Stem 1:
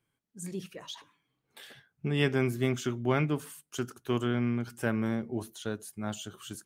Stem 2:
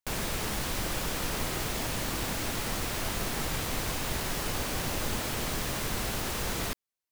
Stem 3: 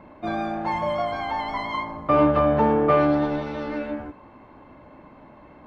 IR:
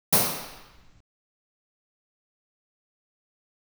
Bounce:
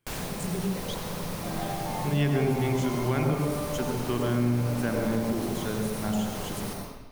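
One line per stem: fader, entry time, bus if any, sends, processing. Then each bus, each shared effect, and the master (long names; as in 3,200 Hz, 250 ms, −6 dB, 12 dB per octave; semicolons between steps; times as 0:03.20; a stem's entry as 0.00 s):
+1.5 dB, 0.00 s, send −19.5 dB, no processing
−2.0 dB, 0.00 s, send −22.5 dB, automatic ducking −7 dB, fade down 0.20 s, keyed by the first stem
−9.5 dB, 1.20 s, send −17.5 dB, downward compressor, threshold −28 dBFS, peak gain reduction 13.5 dB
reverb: on, RT60 1.0 s, pre-delay 76 ms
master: downward compressor 2 to 1, threshold −25 dBFS, peak gain reduction 6 dB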